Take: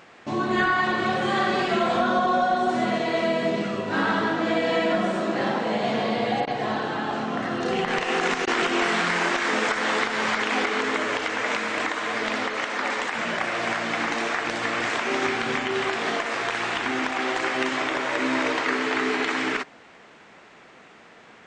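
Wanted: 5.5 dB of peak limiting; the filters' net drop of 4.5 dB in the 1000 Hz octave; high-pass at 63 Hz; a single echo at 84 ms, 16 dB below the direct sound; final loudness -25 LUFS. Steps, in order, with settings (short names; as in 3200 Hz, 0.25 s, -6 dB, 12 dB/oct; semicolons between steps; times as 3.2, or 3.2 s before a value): HPF 63 Hz; bell 1000 Hz -6.5 dB; limiter -17 dBFS; echo 84 ms -16 dB; gain +2 dB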